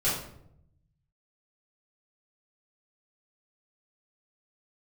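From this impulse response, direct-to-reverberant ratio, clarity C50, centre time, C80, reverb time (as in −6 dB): −11.0 dB, 3.0 dB, 48 ms, 7.0 dB, 0.75 s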